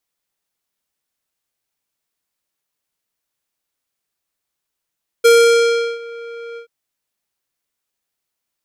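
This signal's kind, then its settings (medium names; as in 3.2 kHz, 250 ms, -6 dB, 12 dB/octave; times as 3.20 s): synth note square A#4 12 dB/octave, low-pass 2.6 kHz, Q 0.95, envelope 2.5 oct, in 0.84 s, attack 15 ms, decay 0.73 s, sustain -23 dB, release 0.10 s, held 1.33 s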